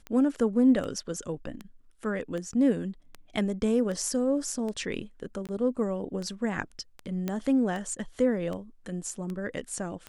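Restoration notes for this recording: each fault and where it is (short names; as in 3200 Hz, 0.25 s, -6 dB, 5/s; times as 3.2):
tick 78 rpm -24 dBFS
5.47–5.49 gap 18 ms
7.28 pop -17 dBFS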